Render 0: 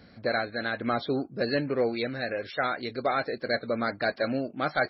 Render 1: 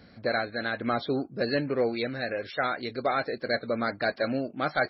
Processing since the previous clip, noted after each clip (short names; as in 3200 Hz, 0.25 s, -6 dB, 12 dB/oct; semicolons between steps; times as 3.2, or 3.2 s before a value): nothing audible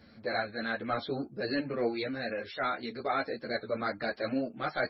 transient shaper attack -4 dB, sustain 0 dB; ensemble effect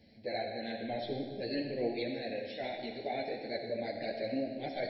Chebyshev band-stop 730–2100 Hz, order 2; reverb RT60 1.6 s, pre-delay 20 ms, DRR 3.5 dB; gain -3.5 dB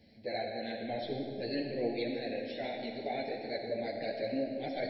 darkening echo 0.169 s, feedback 77%, low-pass 2100 Hz, level -12.5 dB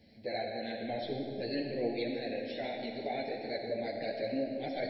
recorder AGC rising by 6.9 dB/s